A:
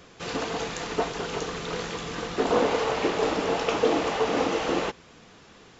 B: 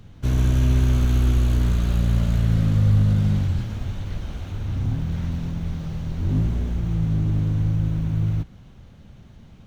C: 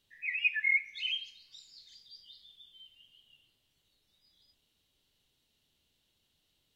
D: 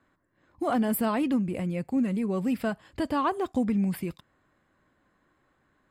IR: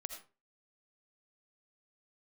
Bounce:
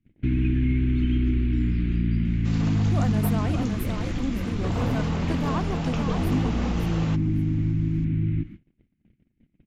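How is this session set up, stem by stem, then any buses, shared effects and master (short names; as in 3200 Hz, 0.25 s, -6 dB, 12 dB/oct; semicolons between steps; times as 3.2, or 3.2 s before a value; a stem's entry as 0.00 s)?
-7.0 dB, 2.25 s, no send, echo send -22 dB, Bessel high-pass 570 Hz
-3.5 dB, 0.00 s, send -3.5 dB, no echo send, EQ curve 110 Hz 0 dB, 330 Hz +13 dB, 520 Hz -23 dB, 1200 Hz -11 dB, 2200 Hz +8 dB, 6700 Hz -27 dB; compressor 2:1, threshold -24 dBFS, peak gain reduction 6.5 dB
-7.5 dB, 0.00 s, no send, no echo send, differentiator
-5.0 dB, 2.30 s, no send, echo send -5.5 dB, dry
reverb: on, RT60 0.35 s, pre-delay 40 ms
echo: feedback echo 0.562 s, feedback 23%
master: gate -38 dBFS, range -31 dB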